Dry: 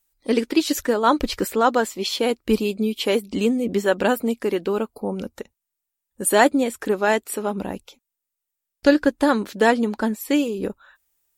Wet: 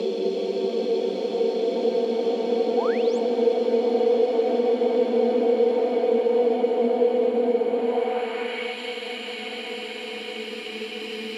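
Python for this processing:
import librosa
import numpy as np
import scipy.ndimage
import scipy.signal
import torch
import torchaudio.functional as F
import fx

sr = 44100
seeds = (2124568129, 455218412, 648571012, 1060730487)

p1 = fx.paulstretch(x, sr, seeds[0], factor=31.0, window_s=0.5, from_s=2.08)
p2 = fx.spec_paint(p1, sr, seeds[1], shape='rise', start_s=2.77, length_s=0.42, low_hz=690.0, high_hz=8300.0, level_db=-28.0)
p3 = fx.backlash(p2, sr, play_db=-26.0)
p4 = p2 + (p3 * librosa.db_to_amplitude(-9.5))
p5 = fx.filter_sweep_bandpass(p4, sr, from_hz=450.0, to_hz=3500.0, start_s=7.73, end_s=8.82, q=1.1)
y = fx.band_squash(p5, sr, depth_pct=40)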